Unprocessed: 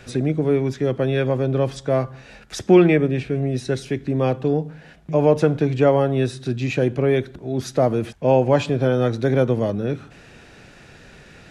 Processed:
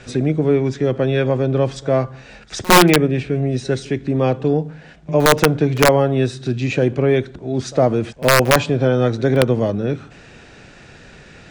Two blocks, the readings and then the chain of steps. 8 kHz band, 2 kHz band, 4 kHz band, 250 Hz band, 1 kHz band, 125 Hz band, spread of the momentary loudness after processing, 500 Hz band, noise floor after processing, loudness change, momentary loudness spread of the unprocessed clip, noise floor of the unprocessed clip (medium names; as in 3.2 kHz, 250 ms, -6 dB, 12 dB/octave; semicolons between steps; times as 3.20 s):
+13.5 dB, +9.5 dB, +11.5 dB, +2.0 dB, +7.0 dB, +2.5 dB, 9 LU, +2.0 dB, -43 dBFS, +3.0 dB, 9 LU, -47 dBFS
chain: steep low-pass 9 kHz 48 dB/octave; integer overflow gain 6 dB; pre-echo 57 ms -22.5 dB; trim +3 dB